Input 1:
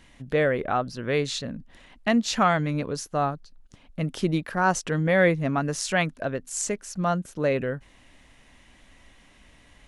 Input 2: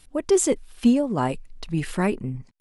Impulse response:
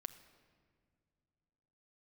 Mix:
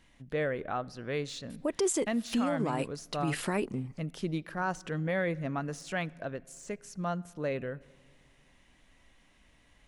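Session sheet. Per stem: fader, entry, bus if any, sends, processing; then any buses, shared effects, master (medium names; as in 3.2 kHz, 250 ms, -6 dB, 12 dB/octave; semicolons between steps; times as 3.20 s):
-11.5 dB, 0.00 s, send -4.5 dB, de-esser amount 70%
0.0 dB, 1.50 s, no send, high-pass 270 Hz 6 dB/octave; peak limiter -18 dBFS, peak gain reduction 10.5 dB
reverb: on, pre-delay 6 ms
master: peak limiter -21.5 dBFS, peak gain reduction 8 dB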